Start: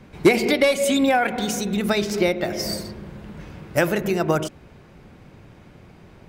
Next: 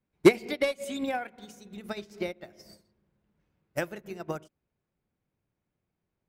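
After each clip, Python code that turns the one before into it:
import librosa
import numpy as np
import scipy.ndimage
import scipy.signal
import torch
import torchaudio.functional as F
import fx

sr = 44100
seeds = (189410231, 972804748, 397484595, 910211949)

y = fx.upward_expand(x, sr, threshold_db=-33.0, expansion=2.5)
y = F.gain(torch.from_numpy(y), -1.0).numpy()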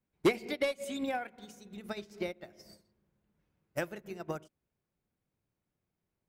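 y = 10.0 ** (-16.0 / 20.0) * np.tanh(x / 10.0 ** (-16.0 / 20.0))
y = F.gain(torch.from_numpy(y), -3.0).numpy()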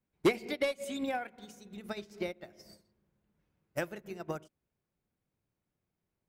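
y = x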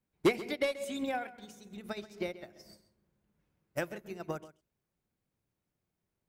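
y = x + 10.0 ** (-16.5 / 20.0) * np.pad(x, (int(133 * sr / 1000.0), 0))[:len(x)]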